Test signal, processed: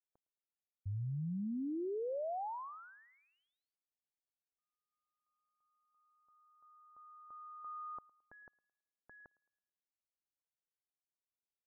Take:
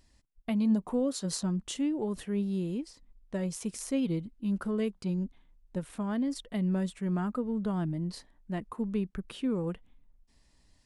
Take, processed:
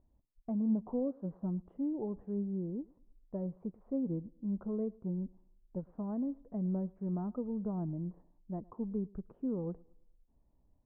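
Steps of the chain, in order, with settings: inverse Chebyshev low-pass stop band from 5100 Hz, stop band 80 dB; on a send: thinning echo 0.109 s, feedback 41%, high-pass 180 Hz, level -23.5 dB; on the sum: gain -5 dB

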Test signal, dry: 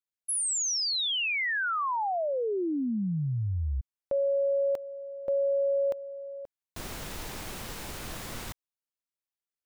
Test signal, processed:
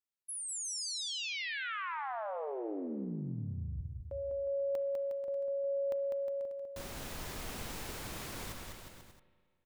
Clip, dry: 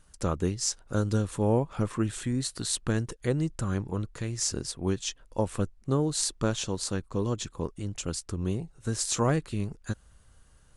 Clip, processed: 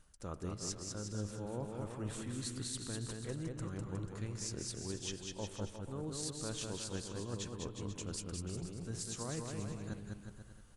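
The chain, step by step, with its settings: reverse; compressor 6:1, threshold -36 dBFS; reverse; bouncing-ball echo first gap 0.2 s, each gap 0.8×, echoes 5; spring tank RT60 1.9 s, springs 34/59 ms, chirp 75 ms, DRR 13.5 dB; gain -4 dB

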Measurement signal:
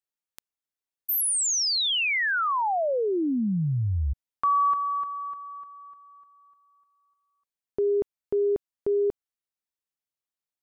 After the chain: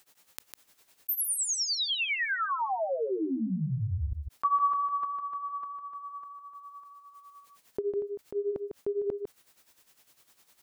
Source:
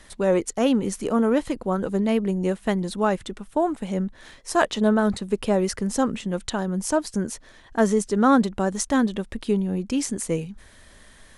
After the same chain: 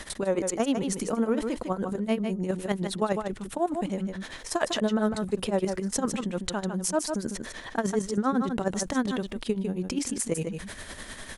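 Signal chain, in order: low shelf 93 Hz -6 dB; level quantiser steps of 11 dB; tremolo 9.9 Hz, depth 94%; echo 0.152 s -11.5 dB; fast leveller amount 50%

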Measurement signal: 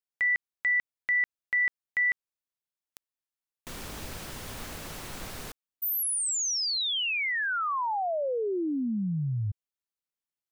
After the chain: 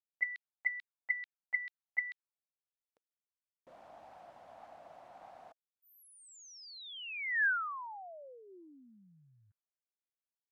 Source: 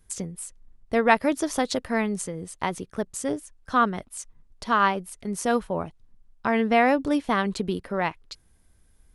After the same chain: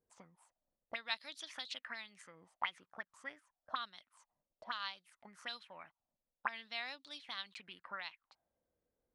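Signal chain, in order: bell 420 Hz -10.5 dB 0.51 oct; auto-wah 450–4000 Hz, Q 6, up, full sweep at -22.5 dBFS; gain +1.5 dB

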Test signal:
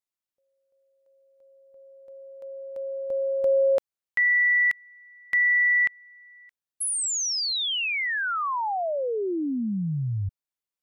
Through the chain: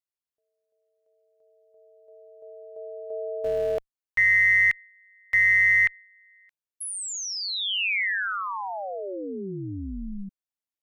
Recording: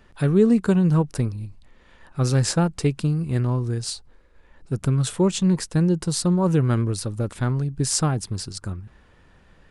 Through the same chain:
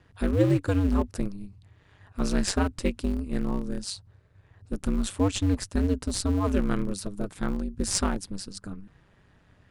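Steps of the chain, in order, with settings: ring modulator 97 Hz; in parallel at -10.5 dB: Schmitt trigger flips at -19 dBFS; on the sum: dynamic EQ 2300 Hz, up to +8 dB, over -37 dBFS, Q 0.72; gain -3 dB

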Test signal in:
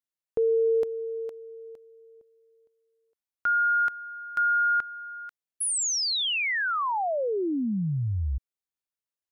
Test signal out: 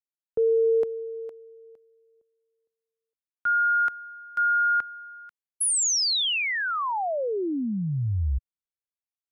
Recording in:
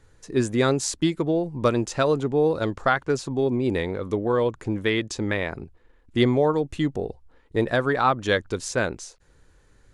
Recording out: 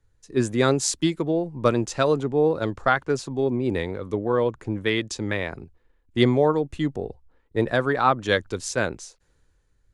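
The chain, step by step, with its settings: three-band expander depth 40%

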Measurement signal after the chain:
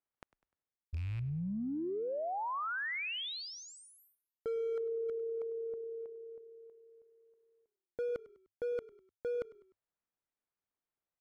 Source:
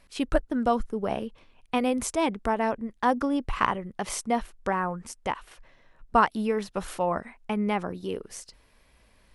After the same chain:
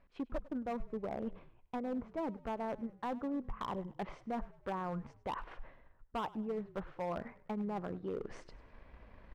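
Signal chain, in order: rattling part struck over -26 dBFS, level -22 dBFS; LPF 1600 Hz 12 dB/oct; treble ducked by the level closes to 1200 Hz, closed at -23.5 dBFS; transient shaper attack +6 dB, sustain 0 dB; reverse; compressor 4:1, threshold -42 dBFS; reverse; hard clip -36.5 dBFS; frequency-shifting echo 0.1 s, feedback 44%, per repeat -35 Hz, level -19.5 dB; gain +4 dB

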